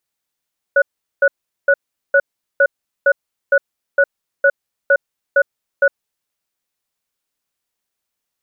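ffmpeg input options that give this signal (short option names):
-f lavfi -i "aevalsrc='0.282*(sin(2*PI*558*t)+sin(2*PI*1470*t))*clip(min(mod(t,0.46),0.06-mod(t,0.46))/0.005,0,1)':d=5.14:s=44100"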